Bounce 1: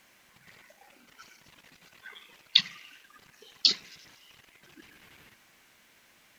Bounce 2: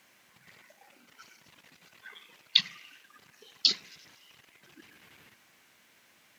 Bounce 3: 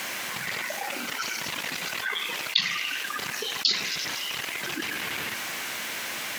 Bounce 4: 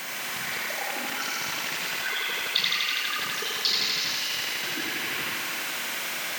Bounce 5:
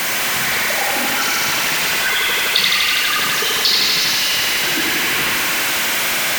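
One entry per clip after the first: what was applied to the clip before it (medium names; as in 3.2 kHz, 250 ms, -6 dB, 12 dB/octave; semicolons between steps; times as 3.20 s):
high-pass 84 Hz; trim -1.5 dB
bass shelf 270 Hz -8.5 dB; level flattener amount 70%; trim -1.5 dB
thinning echo 82 ms, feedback 83%, high-pass 170 Hz, level -3 dB; whistle 16 kHz -37 dBFS; trim -2.5 dB
jump at every zero crossing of -23.5 dBFS; trim +6.5 dB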